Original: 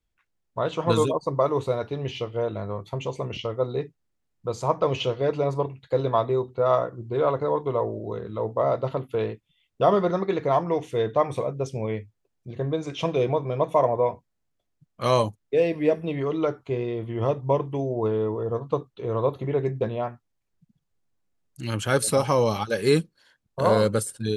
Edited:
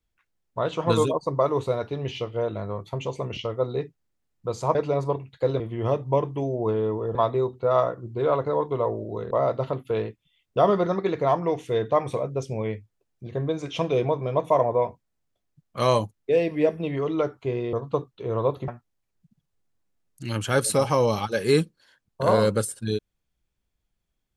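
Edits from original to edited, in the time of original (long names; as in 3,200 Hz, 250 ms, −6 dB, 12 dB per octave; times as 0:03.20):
0:04.75–0:05.25: remove
0:08.26–0:08.55: remove
0:16.97–0:18.52: move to 0:06.10
0:19.47–0:20.06: remove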